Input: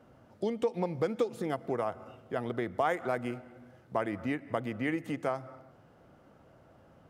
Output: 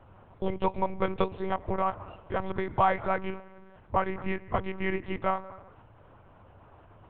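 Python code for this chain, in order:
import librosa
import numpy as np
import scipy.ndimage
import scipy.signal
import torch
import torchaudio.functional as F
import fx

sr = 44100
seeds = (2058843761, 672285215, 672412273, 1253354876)

y = fx.lpc_monotone(x, sr, seeds[0], pitch_hz=190.0, order=8)
y = fx.graphic_eq_15(y, sr, hz=(100, 1000, 2500), db=(9, 9, 4))
y = F.gain(torch.from_numpy(y), 1.5).numpy()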